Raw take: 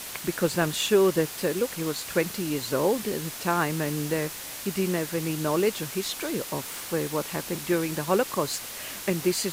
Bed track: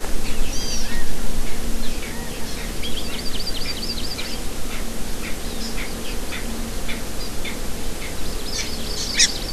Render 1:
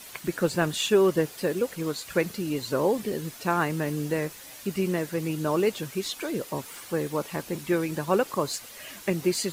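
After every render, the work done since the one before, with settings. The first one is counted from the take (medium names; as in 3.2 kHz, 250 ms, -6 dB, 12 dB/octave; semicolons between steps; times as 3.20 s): noise reduction 9 dB, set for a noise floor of -38 dBFS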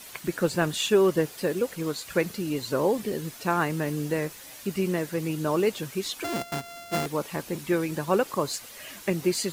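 6.24–7.06 s: sorted samples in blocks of 64 samples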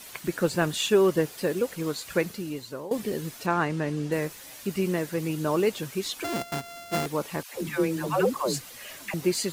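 2.14–2.91 s: fade out, to -17.5 dB; 3.46–4.12 s: distance through air 67 m; 7.43–9.14 s: phase dispersion lows, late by 134 ms, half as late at 480 Hz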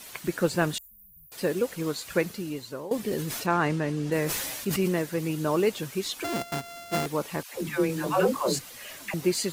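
0.78–1.32 s: inverse Chebyshev band-stop 360–3700 Hz, stop band 80 dB; 3.08–5.02 s: decay stretcher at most 30 dB/s; 7.87–8.59 s: doubling 23 ms -5 dB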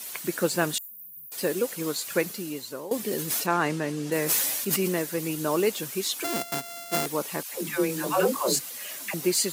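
high-pass 180 Hz 12 dB/octave; treble shelf 6 kHz +10.5 dB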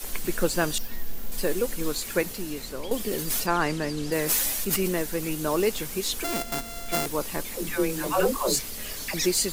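add bed track -14 dB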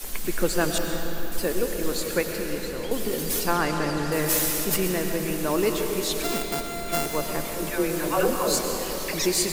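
algorithmic reverb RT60 4.4 s, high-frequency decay 0.65×, pre-delay 70 ms, DRR 3 dB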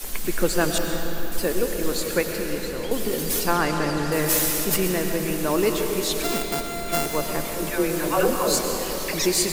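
trim +2 dB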